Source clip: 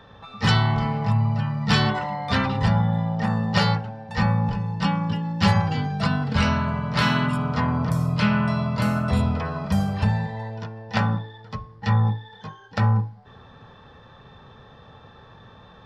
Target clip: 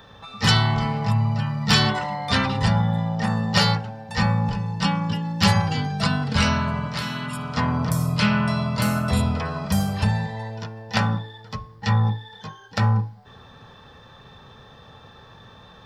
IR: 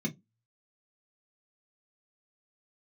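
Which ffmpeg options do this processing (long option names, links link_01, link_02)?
-filter_complex "[0:a]asettb=1/sr,asplit=3[link_01][link_02][link_03];[link_01]atrim=end=6.864[link_04];[link_02]atrim=start=6.86:end=7.57,asetpts=PTS-STARTPTS,afade=type=in:duration=0.004:curve=qsin,afade=type=out:start_time=0.706:duration=0.004:curve=qsin,acrossover=split=560|1500[link_05][link_06][link_07];[link_05]acompressor=threshold=-30dB:ratio=4[link_08];[link_06]acompressor=threshold=-38dB:ratio=4[link_09];[link_07]acompressor=threshold=-37dB:ratio=4[link_10];[link_08][link_09][link_10]amix=inputs=3:normalize=0[link_11];[link_03]atrim=start=7.566[link_12];[link_04][link_11]acrossfade=duration=0.004:curve1=hsin:curve2=qsin[link_13];[link_13][link_12]acrossfade=duration=0.004:curve1=qsin:curve2=hsin,crystalizer=i=2.5:c=0"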